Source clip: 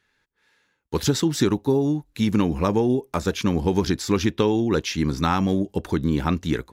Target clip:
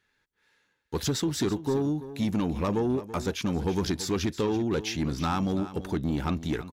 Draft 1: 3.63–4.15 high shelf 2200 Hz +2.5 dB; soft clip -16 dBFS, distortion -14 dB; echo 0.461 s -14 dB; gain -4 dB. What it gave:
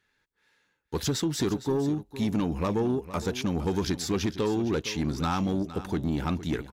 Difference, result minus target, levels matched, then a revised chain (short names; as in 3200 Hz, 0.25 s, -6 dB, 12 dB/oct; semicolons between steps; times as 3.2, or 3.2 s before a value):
echo 0.128 s late
3.63–4.15 high shelf 2200 Hz +2.5 dB; soft clip -16 dBFS, distortion -14 dB; echo 0.333 s -14 dB; gain -4 dB